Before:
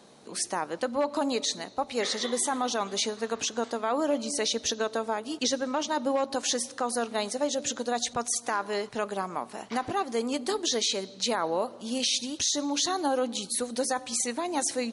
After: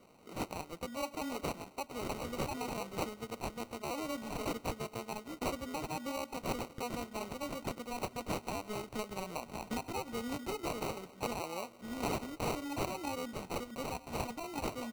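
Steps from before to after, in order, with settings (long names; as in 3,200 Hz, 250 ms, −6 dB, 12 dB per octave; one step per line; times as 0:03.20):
dynamic equaliser 510 Hz, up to −7 dB, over −41 dBFS, Q 0.73
decimation without filtering 26×
0:08.33–0:11.06: multiband upward and downward compressor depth 100%
level −7 dB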